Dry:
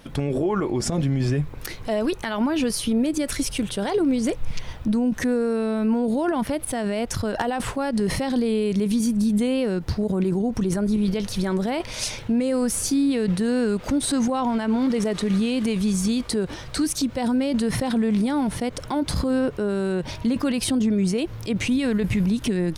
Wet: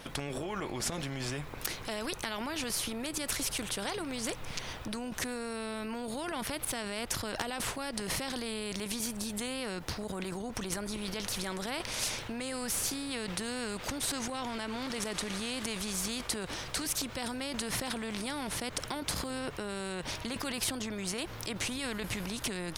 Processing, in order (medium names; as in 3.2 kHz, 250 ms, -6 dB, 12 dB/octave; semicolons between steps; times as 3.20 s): spectrum-flattening compressor 2:1